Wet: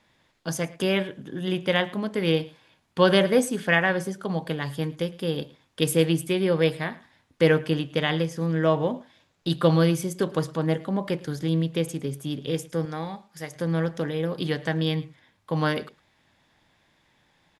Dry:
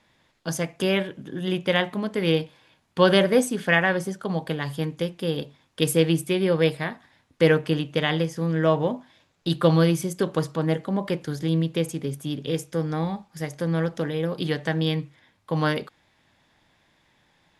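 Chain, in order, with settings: 12.85–13.56 low shelf 380 Hz -9 dB; on a send: echo 0.109 s -21 dB; on the sum: gain -1 dB

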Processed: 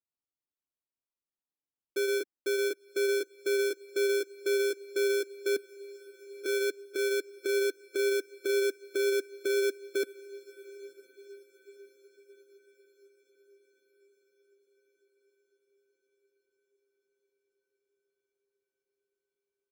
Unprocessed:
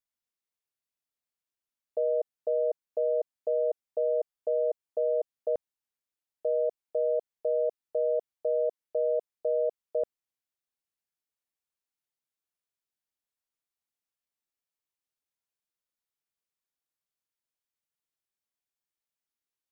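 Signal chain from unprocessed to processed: delay-line pitch shifter -3 st; bell 280 Hz +15 dB 1.3 oct; comb 2.8 ms, depth 72%; dynamic EQ 200 Hz, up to +6 dB, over -36 dBFS, Q 0.76; limiter -18.5 dBFS, peak gain reduction 8.5 dB; sample-and-hold 23×; diffused feedback echo 0.996 s, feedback 61%, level -14 dB; upward expander 1.5:1, over -46 dBFS; gain -4.5 dB

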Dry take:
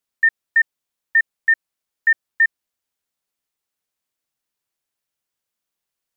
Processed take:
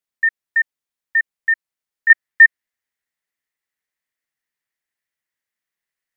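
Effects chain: bell 1900 Hz +4.5 dB 0.47 oct, from 2.1 s +15 dB; gain -5.5 dB

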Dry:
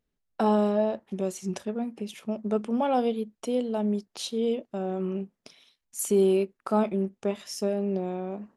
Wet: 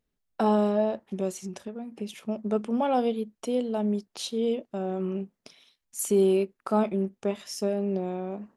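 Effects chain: 1.32–1.92 compressor 10:1, threshold -33 dBFS, peak gain reduction 8 dB

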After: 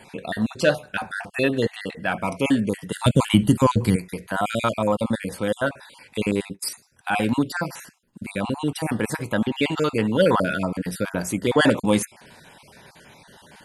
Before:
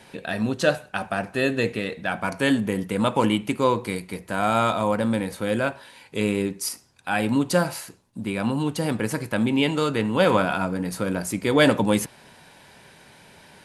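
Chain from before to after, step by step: random spectral dropouts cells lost 34%; 2.92–3.96 tone controls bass +15 dB, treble +8 dB; in parallel at -10 dB: soft clip -15 dBFS, distortion -13 dB; 6.31–6.71 on the sum: gate -31 dBFS, range -23 dB; 7.5–8.22 fifteen-band EQ 100 Hz -11 dB, 630 Hz -5 dB, 4000 Hz -7 dB, 10000 Hz -7 dB

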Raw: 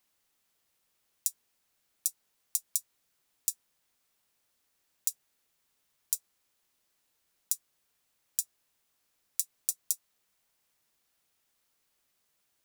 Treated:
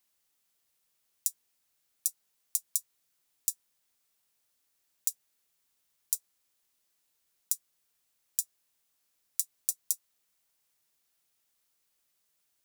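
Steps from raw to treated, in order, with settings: high shelf 3700 Hz +6 dB; gain -5 dB

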